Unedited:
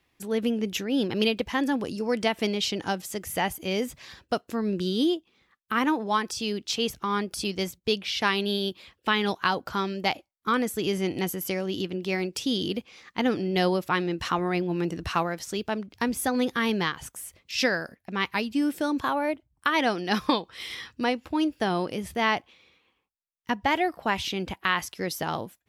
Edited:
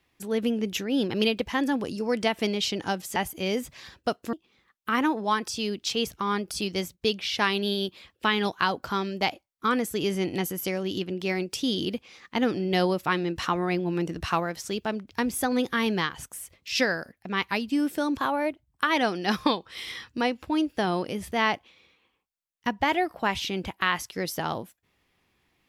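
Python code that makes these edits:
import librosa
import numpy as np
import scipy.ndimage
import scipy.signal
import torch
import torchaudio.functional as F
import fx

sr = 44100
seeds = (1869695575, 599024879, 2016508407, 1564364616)

y = fx.edit(x, sr, fx.cut(start_s=3.16, length_s=0.25),
    fx.cut(start_s=4.58, length_s=0.58), tone=tone)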